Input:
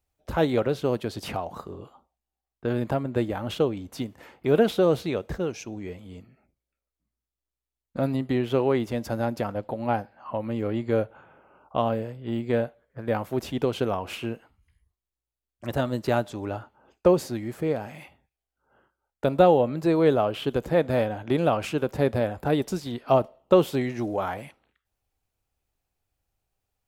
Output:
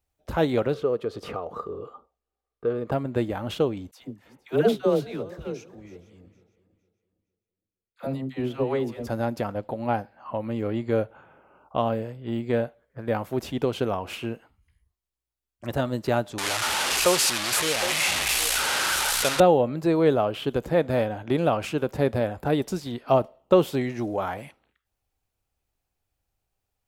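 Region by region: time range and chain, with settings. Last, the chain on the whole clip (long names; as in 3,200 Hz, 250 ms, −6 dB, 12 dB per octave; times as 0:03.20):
0:00.74–0:02.92: high-shelf EQ 6,700 Hz −10.5 dB + downward compressor 1.5 to 1, threshold −44 dBFS + hollow resonant body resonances 460/1,200 Hz, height 15 dB, ringing for 30 ms
0:03.91–0:09.07: feedback delay that plays each chunk backwards 230 ms, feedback 52%, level −14 dB + all-pass dispersion lows, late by 88 ms, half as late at 650 Hz + expander for the loud parts, over −36 dBFS
0:16.38–0:19.40: linear delta modulator 64 kbit/s, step −24 dBFS + tilt shelving filter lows −10 dB, about 700 Hz + echo through a band-pass that steps 254 ms, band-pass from 3,200 Hz, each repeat −1.4 octaves, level −4.5 dB
whole clip: no processing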